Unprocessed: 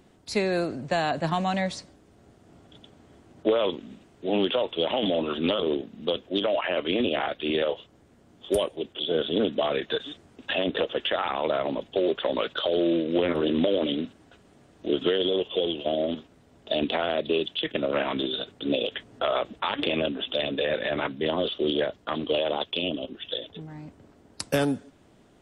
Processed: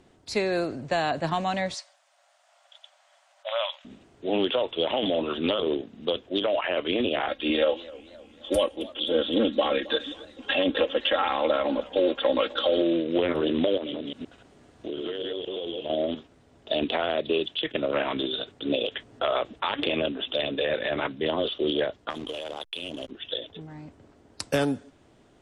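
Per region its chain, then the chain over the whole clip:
1.74–3.85 brick-wall FIR high-pass 540 Hz + tilt shelf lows -3.5 dB, about 1300 Hz
7.28–12.82 comb 3.7 ms, depth 82% + warbling echo 0.262 s, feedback 53%, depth 148 cents, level -20 dB
13.77–15.9 reverse delay 0.12 s, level -2 dB + compressor 5:1, threshold -29 dBFS
22.1–23.11 high shelf 2200 Hz +8 dB + compressor 12:1, threshold -29 dBFS + backlash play -36.5 dBFS
whole clip: LPF 9800 Hz; bell 190 Hz -4.5 dB 0.54 oct

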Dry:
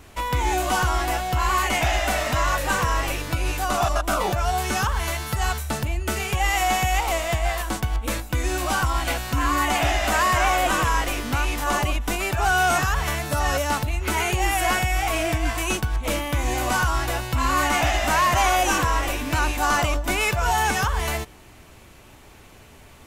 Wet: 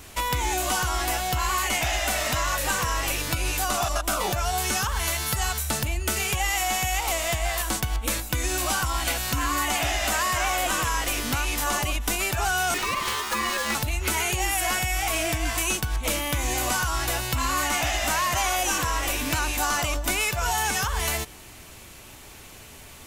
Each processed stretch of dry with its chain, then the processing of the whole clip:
12.74–13.75 ring modulator 1100 Hz + running maximum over 3 samples
whole clip: high shelf 2900 Hz +10 dB; compressor, threshold -22 dBFS

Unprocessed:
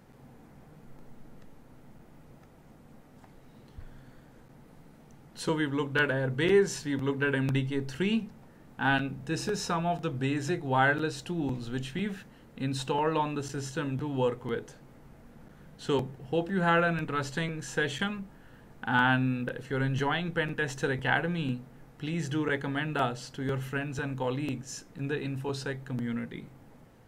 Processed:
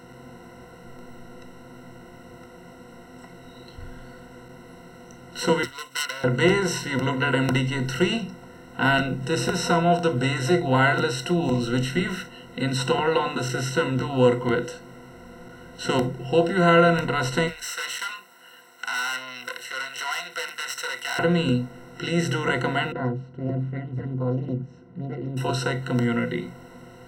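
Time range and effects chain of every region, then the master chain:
5.63–6.24 self-modulated delay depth 0.26 ms + differentiator
17.47–21.19 high shelf 6100 Hz +10.5 dB + tube stage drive 33 dB, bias 0.65 + HPF 1200 Hz
22.92–25.37 band-pass 140 Hz, Q 1.3 + air absorption 150 m + Doppler distortion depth 0.64 ms
whole clip: per-bin compression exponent 0.6; spectral noise reduction 9 dB; ripple EQ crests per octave 2, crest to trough 18 dB

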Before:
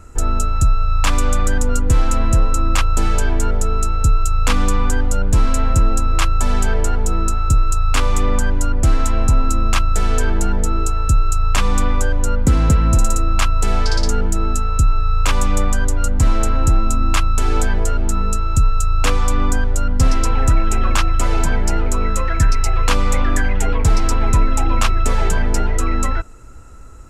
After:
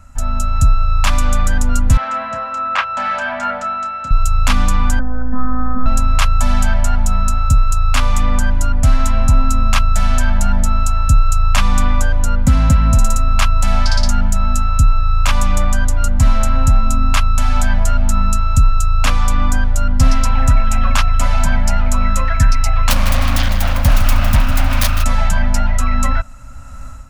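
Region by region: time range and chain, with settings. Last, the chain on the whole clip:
1.97–4.11 BPF 440–2700 Hz + bell 1600 Hz +4 dB 0.78 oct + doubler 29 ms -12 dB
4.99–5.86 robotiser 254 Hz + brick-wall FIR low-pass 1800 Hz
22.9–25.04 self-modulated delay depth 0.99 ms + lo-fi delay 0.156 s, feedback 55%, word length 6-bit, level -9.5 dB
whole clip: elliptic band-stop 270–550 Hz, stop band 40 dB; bell 7900 Hz -4 dB 0.44 oct; AGC; gain -1 dB

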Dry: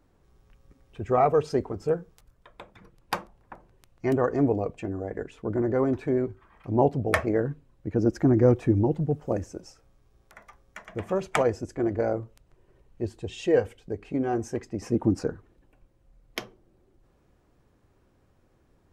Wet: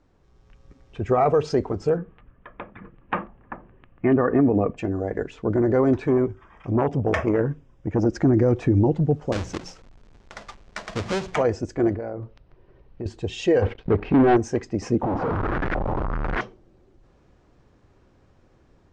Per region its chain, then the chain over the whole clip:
1.97–4.77 steep low-pass 3000 Hz 48 dB/oct + small resonant body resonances 230/1200/1700 Hz, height 7 dB, ringing for 20 ms
6.07–8.06 Butterworth band-stop 4200 Hz, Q 3.9 + core saturation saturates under 700 Hz
9.32–11.35 half-waves squared off + notches 60/120/180 Hz + compressor 2.5:1, threshold -32 dBFS
11.94–13.06 high shelf 3900 Hz -6 dB + compressor, threshold -34 dBFS + polynomial smoothing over 15 samples
13.62–14.37 sample leveller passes 3 + air absorption 340 m
15.03–16.41 infinite clipping + LFO low-pass saw up 1.4 Hz 740–1900 Hz
whole clip: LPF 7000 Hz 24 dB/oct; AGC gain up to 4.5 dB; limiter -13 dBFS; gain +2 dB

